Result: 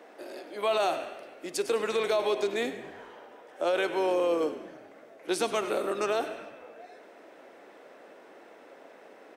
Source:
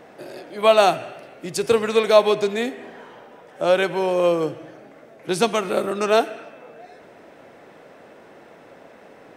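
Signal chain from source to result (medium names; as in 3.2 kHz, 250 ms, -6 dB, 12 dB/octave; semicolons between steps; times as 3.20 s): high-pass 260 Hz 24 dB/octave; peak limiter -14 dBFS, peak gain reduction 11.5 dB; frequency-shifting echo 100 ms, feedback 41%, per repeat -51 Hz, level -14 dB; trim -5 dB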